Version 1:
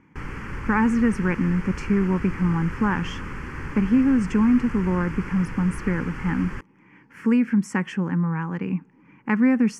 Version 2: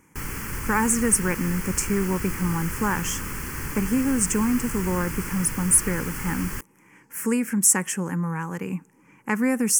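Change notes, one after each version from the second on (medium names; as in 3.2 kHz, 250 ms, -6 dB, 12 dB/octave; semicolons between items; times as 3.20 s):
speech: add ten-band graphic EQ 125 Hz -3 dB, 250 Hz -5 dB, 500 Hz +3 dB, 4 kHz -8 dB, 8 kHz +6 dB; master: remove low-pass 2.5 kHz 12 dB/octave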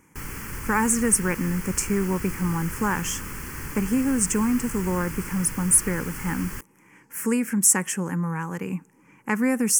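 background -3.0 dB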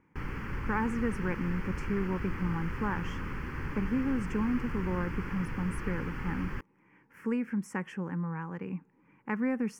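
speech -7.0 dB; master: add distance through air 340 m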